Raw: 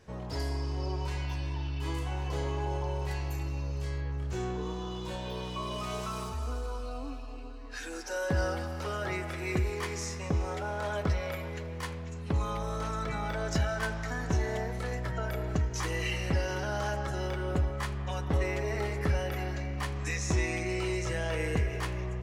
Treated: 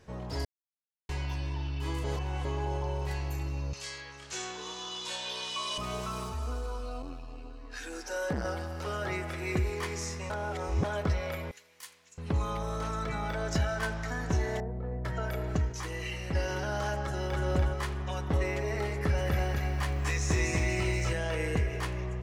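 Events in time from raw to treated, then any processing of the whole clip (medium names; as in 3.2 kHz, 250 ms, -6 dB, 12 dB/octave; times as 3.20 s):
0.45–1.09 s: mute
2.04–2.45 s: reverse
3.73–5.78 s: frequency weighting ITU-R 468
7.02–8.87 s: transformer saturation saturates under 360 Hz
10.30–10.84 s: reverse
11.51–12.18 s: differentiator
14.60–15.05 s: Bessel low-pass 540 Hz
15.72–16.35 s: gain -4.5 dB
17.03–17.44 s: echo throw 290 ms, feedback 45%, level -3 dB
18.93–21.13 s: bit-crushed delay 244 ms, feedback 35%, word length 10-bit, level -3 dB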